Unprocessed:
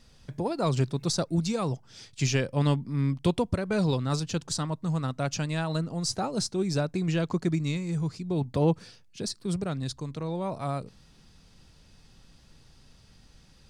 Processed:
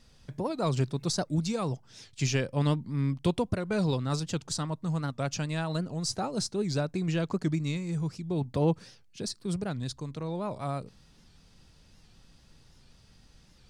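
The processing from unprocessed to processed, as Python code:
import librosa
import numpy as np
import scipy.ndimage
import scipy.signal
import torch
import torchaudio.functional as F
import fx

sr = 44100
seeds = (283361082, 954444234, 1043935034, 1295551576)

y = fx.record_warp(x, sr, rpm=78.0, depth_cents=160.0)
y = y * 10.0 ** (-2.0 / 20.0)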